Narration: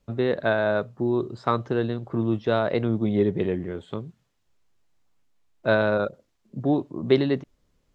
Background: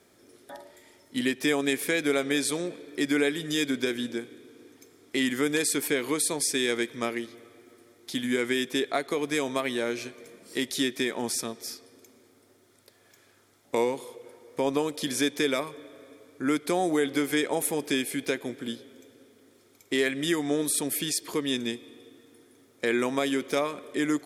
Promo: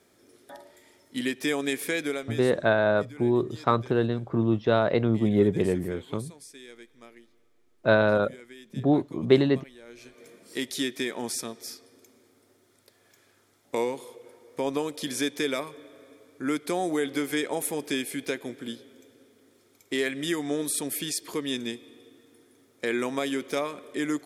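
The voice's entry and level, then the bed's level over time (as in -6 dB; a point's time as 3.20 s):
2.20 s, +0.5 dB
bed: 2.01 s -2 dB
2.64 s -20.5 dB
9.82 s -20.5 dB
10.25 s -2 dB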